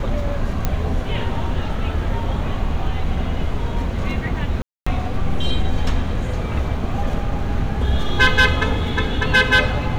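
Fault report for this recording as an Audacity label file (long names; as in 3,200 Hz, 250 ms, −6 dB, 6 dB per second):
0.650000	0.650000	click −6 dBFS
4.620000	4.870000	drop-out 245 ms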